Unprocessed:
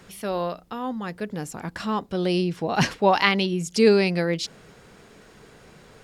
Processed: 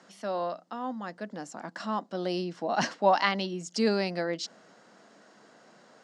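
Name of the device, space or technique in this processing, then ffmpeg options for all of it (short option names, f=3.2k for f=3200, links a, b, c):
television speaker: -af "highpass=170,highpass=f=160:w=0.5412,highpass=f=160:w=1.3066,equalizer=f=160:t=q:w=4:g=-6,equalizer=f=420:t=q:w=4:g=-9,equalizer=f=650:t=q:w=4:g=5,equalizer=f=2.4k:t=q:w=4:g=-9,equalizer=f=3.5k:t=q:w=4:g=-5,lowpass=f=7.3k:w=0.5412,lowpass=f=7.3k:w=1.3066,volume=-4dB"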